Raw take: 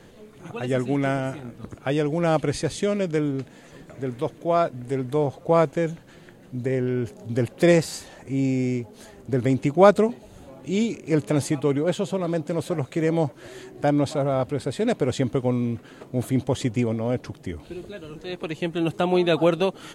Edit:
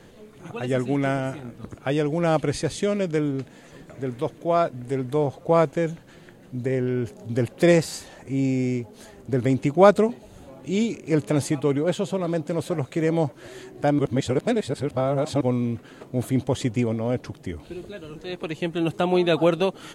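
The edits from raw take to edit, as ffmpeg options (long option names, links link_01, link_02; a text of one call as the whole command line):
ffmpeg -i in.wav -filter_complex "[0:a]asplit=3[link_01][link_02][link_03];[link_01]atrim=end=13.992[link_04];[link_02]atrim=start=13.988:end=15.412,asetpts=PTS-STARTPTS,areverse[link_05];[link_03]atrim=start=15.408[link_06];[link_04][link_05]acrossfade=duration=0.004:curve1=hsin:curve2=hsin[link_07];[link_07][link_06]acrossfade=duration=0.004:curve1=hsin:curve2=hsin" out.wav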